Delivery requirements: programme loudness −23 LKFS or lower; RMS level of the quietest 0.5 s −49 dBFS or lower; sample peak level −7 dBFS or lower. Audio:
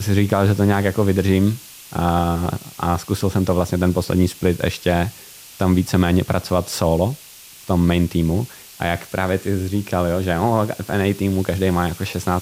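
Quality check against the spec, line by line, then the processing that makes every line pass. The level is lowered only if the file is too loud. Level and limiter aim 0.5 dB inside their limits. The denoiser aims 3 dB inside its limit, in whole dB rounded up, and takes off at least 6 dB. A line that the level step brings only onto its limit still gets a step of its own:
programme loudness −20.0 LKFS: out of spec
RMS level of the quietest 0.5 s −42 dBFS: out of spec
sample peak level −4.0 dBFS: out of spec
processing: broadband denoise 7 dB, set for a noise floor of −42 dBFS
level −3.5 dB

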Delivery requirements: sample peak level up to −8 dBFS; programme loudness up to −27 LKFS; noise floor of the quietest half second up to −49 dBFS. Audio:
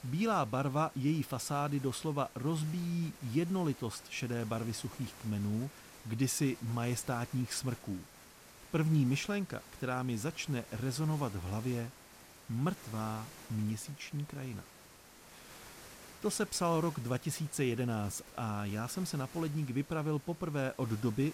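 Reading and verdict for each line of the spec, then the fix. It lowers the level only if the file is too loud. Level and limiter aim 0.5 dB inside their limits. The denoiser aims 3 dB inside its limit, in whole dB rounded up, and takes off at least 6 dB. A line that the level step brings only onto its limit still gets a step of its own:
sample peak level −19.5 dBFS: in spec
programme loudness −36.0 LKFS: in spec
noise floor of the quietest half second −57 dBFS: in spec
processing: no processing needed

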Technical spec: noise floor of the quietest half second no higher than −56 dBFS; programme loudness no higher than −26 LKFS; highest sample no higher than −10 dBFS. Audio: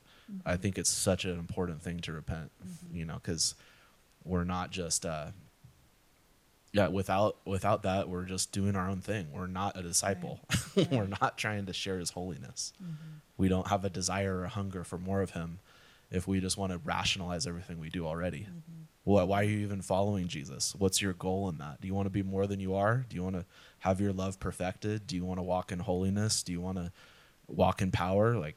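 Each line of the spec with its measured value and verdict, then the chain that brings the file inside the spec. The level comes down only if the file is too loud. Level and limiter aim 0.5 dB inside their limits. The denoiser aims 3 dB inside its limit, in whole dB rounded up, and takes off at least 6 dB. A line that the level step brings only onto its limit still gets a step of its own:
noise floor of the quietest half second −66 dBFS: in spec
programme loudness −33.0 LKFS: in spec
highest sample −12.5 dBFS: in spec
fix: no processing needed

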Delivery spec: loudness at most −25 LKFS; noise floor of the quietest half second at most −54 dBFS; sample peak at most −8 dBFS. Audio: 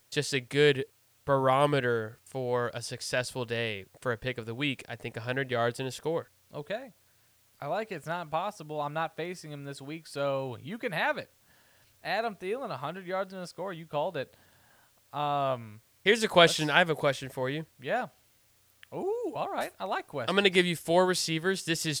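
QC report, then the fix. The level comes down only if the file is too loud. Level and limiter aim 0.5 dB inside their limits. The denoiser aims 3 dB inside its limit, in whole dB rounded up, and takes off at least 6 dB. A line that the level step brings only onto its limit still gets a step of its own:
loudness −30.0 LKFS: in spec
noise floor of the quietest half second −65 dBFS: in spec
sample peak −6.0 dBFS: out of spec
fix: brickwall limiter −8.5 dBFS

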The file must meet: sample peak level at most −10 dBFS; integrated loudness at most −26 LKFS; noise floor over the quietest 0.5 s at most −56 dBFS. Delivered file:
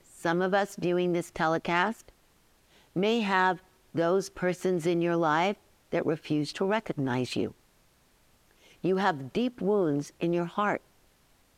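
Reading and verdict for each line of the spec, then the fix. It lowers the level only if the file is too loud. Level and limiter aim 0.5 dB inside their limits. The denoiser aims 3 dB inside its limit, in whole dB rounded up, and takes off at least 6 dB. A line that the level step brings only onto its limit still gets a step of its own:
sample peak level −12.5 dBFS: in spec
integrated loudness −29.0 LKFS: in spec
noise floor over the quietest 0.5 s −64 dBFS: in spec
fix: no processing needed

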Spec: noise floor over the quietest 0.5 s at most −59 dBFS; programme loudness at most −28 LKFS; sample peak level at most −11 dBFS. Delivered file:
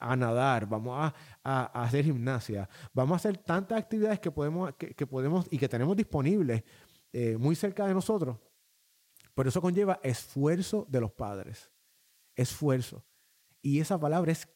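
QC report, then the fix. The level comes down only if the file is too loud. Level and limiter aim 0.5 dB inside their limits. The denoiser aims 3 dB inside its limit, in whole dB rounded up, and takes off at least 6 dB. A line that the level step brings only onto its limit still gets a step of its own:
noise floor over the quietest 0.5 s −69 dBFS: in spec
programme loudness −31.0 LKFS: in spec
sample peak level −15.5 dBFS: in spec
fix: no processing needed

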